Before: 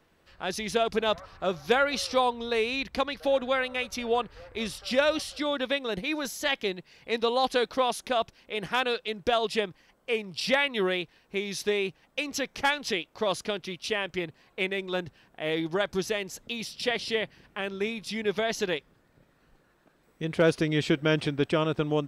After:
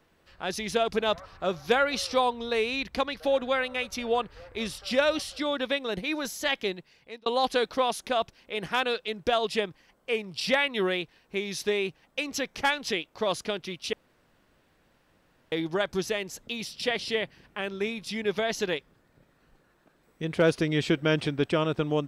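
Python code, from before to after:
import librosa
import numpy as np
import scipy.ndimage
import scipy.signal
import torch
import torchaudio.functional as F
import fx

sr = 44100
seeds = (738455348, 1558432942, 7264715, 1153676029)

y = fx.edit(x, sr, fx.fade_out_span(start_s=6.69, length_s=0.57),
    fx.room_tone_fill(start_s=13.93, length_s=1.59), tone=tone)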